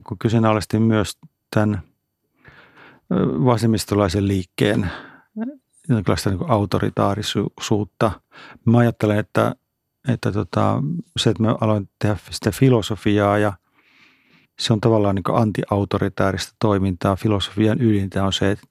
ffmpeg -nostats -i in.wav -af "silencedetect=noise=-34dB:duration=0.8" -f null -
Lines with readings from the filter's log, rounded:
silence_start: 13.54
silence_end: 14.59 | silence_duration: 1.05